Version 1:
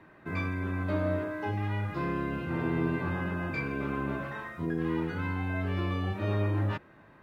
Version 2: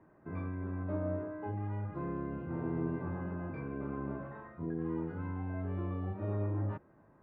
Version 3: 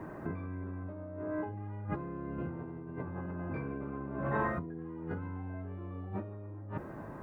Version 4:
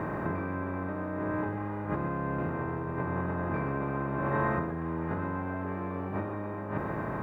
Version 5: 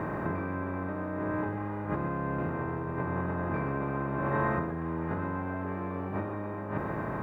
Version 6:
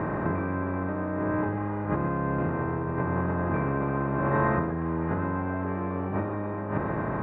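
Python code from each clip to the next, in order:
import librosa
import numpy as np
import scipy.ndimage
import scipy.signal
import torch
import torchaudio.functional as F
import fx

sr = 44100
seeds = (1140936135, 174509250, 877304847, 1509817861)

y1 = scipy.signal.sosfilt(scipy.signal.butter(2, 1000.0, 'lowpass', fs=sr, output='sos'), x)
y1 = y1 * 10.0 ** (-5.5 / 20.0)
y2 = fx.over_compress(y1, sr, threshold_db=-48.0, ratio=-1.0)
y2 = y2 * 10.0 ** (8.5 / 20.0)
y3 = fx.bin_compress(y2, sr, power=0.4)
y3 = y3 + 10.0 ** (-9.5 / 20.0) * np.pad(y3, (int(123 * sr / 1000.0), 0))[:len(y3)]
y4 = y3
y5 = fx.air_absorb(y4, sr, metres=240.0)
y5 = y5 * 10.0 ** (5.0 / 20.0)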